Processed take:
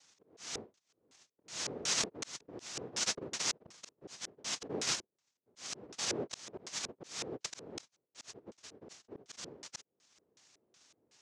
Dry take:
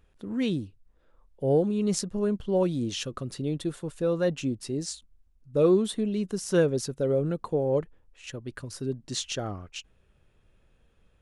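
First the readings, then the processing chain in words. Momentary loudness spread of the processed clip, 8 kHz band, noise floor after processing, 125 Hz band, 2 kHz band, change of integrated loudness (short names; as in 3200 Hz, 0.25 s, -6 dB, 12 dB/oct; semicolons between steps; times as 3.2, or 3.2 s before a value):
18 LU, +1.0 dB, under -85 dBFS, -23.5 dB, -2.5 dB, -10.5 dB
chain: low shelf 260 Hz -10 dB; noise vocoder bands 1; LFO low-pass square 2.7 Hz 430–6300 Hz; reverse; compressor 8:1, threshold -34 dBFS, peak gain reduction 18.5 dB; reverse; auto swell 0.494 s; gain +4.5 dB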